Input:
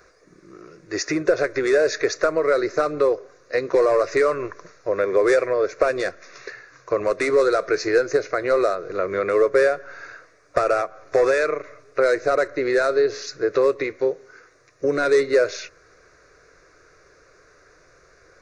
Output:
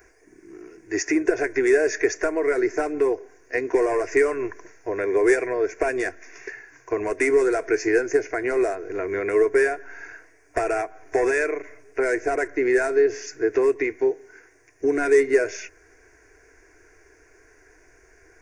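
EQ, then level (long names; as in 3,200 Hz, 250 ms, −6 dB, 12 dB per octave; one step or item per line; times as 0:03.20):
low-shelf EQ 430 Hz +3 dB
high-shelf EQ 6,300 Hz +8.5 dB
phaser with its sweep stopped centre 820 Hz, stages 8
+1.0 dB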